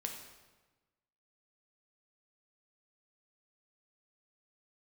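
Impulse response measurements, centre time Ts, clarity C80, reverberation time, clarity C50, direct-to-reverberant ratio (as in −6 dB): 34 ms, 7.5 dB, 1.2 s, 5.0 dB, 2.0 dB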